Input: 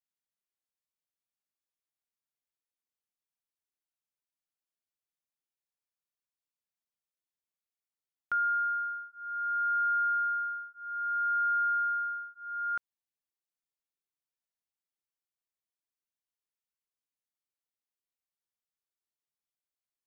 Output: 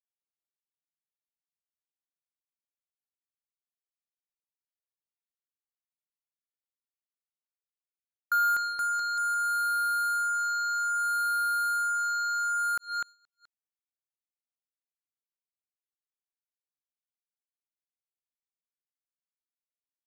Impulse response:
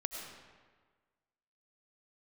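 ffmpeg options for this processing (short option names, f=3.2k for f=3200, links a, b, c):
-af "aecho=1:1:250|475|677.5|859.8|1024:0.631|0.398|0.251|0.158|0.1,acrusher=bits=5:mix=0:aa=0.5,agate=range=-33dB:threshold=-40dB:ratio=3:detection=peak,volume=3.5dB"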